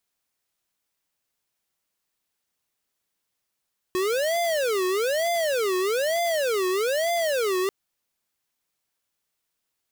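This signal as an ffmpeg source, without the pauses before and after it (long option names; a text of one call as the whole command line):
ffmpeg -f lavfi -i "aevalsrc='0.0631*(2*lt(mod((528*t-162/(2*PI*1.1)*sin(2*PI*1.1*t)),1),0.5)-1)':duration=3.74:sample_rate=44100" out.wav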